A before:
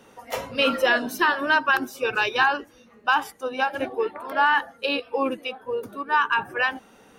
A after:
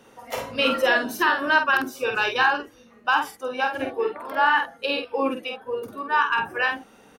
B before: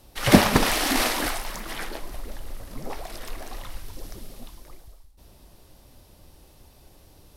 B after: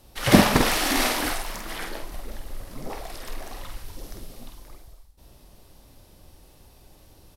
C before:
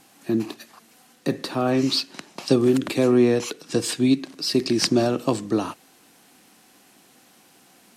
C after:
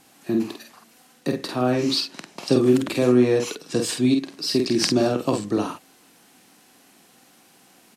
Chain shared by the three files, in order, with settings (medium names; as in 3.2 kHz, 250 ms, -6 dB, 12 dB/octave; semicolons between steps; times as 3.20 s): doubling 48 ms -5 dB; trim -1 dB